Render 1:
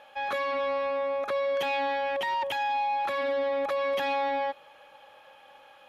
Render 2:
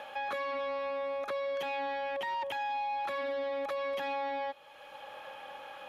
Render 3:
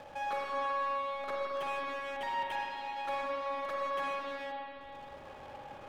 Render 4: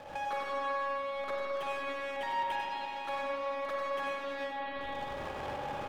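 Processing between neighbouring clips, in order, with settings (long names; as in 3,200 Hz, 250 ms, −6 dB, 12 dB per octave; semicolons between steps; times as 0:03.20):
multiband upward and downward compressor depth 70%; level −6.5 dB
slack as between gear wheels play −39.5 dBFS; spring reverb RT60 3.2 s, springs 41/53 ms, chirp 55 ms, DRR −3 dB; level −3 dB
camcorder AGC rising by 47 dB per second; single-tap delay 96 ms −7 dB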